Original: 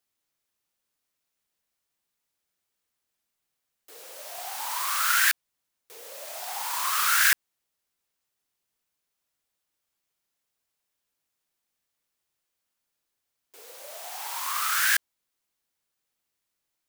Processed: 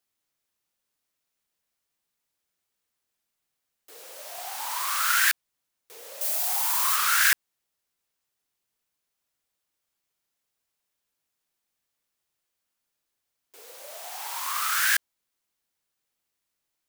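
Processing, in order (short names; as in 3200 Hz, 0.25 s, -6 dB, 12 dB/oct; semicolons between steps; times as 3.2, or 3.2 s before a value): 6.21–6.96 switching spikes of -24.5 dBFS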